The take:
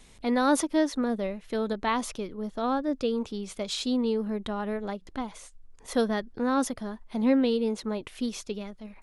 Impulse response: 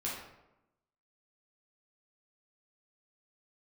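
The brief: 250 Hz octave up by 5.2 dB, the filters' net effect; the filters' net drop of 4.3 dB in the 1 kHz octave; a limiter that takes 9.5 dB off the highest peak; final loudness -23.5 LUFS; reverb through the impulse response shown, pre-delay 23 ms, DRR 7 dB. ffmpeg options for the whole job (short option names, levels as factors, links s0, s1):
-filter_complex "[0:a]equalizer=f=250:t=o:g=6,equalizer=f=1000:t=o:g=-6,alimiter=limit=0.119:level=0:latency=1,asplit=2[s0][s1];[1:a]atrim=start_sample=2205,adelay=23[s2];[s1][s2]afir=irnorm=-1:irlink=0,volume=0.316[s3];[s0][s3]amix=inputs=2:normalize=0,volume=1.58"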